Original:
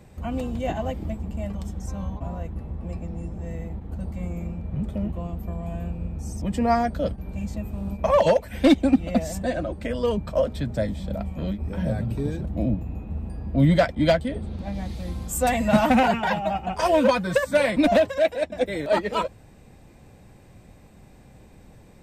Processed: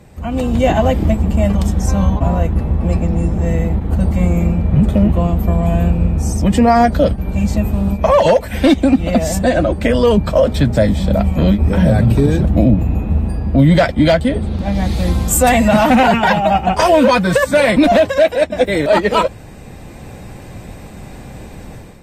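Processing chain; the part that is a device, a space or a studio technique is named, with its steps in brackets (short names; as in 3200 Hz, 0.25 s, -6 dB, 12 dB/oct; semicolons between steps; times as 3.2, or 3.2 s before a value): low-bitrate web radio (AGC gain up to 11 dB; limiter -9 dBFS, peak gain reduction 7.5 dB; gain +6 dB; AAC 48 kbps 44100 Hz)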